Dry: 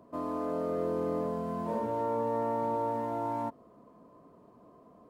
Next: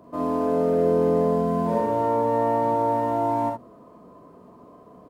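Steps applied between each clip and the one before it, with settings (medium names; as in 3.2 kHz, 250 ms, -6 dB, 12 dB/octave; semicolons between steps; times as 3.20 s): hum notches 60/120 Hz; early reflections 42 ms -3.5 dB, 58 ms -6 dB, 70 ms -6 dB; trim +6 dB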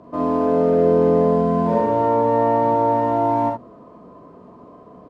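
distance through air 96 m; trim +5 dB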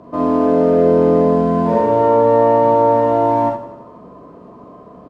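feedback delay 85 ms, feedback 57%, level -12 dB; trim +4 dB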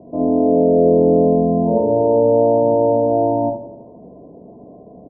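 elliptic low-pass 770 Hz, stop band 50 dB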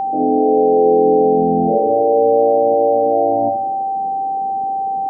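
resonances exaggerated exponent 2; whistle 780 Hz -17 dBFS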